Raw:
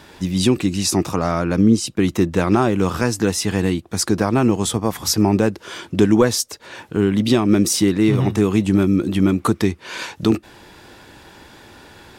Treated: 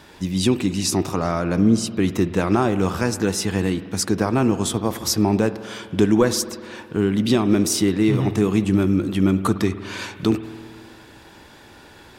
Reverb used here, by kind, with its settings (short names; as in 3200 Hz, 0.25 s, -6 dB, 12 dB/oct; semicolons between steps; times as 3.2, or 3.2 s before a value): spring tank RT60 2.1 s, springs 52 ms, chirp 60 ms, DRR 12 dB; gain -2.5 dB